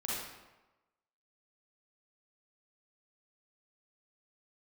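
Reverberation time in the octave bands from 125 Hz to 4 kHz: 1.0, 1.0, 1.1, 1.1, 0.95, 0.75 seconds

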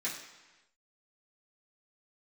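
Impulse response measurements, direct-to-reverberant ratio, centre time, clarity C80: −10.0 dB, 39 ms, 8.0 dB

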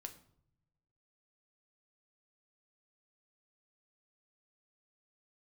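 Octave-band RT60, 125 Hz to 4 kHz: 1.5, 1.2, 0.75, 0.65, 0.45, 0.45 seconds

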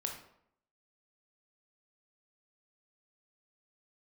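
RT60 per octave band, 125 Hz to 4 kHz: 0.70, 0.75, 0.75, 0.70, 0.55, 0.45 seconds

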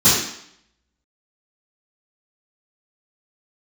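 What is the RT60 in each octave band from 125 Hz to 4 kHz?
0.50, 0.70, 0.65, 0.70, 0.70, 0.70 seconds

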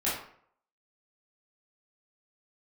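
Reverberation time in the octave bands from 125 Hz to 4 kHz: 0.60, 0.55, 0.60, 0.60, 0.50, 0.40 seconds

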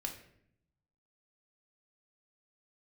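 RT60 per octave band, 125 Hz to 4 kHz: 1.3, 1.1, 0.75, 0.60, 0.65, 0.50 seconds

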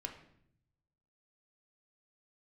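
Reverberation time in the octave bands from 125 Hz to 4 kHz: 1.4, 1.0, 0.75, 0.60, 0.65, 0.55 seconds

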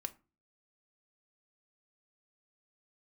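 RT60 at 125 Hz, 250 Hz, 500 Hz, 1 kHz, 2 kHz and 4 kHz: 0.50, 0.45, 0.30, 0.30, 0.25, 0.20 seconds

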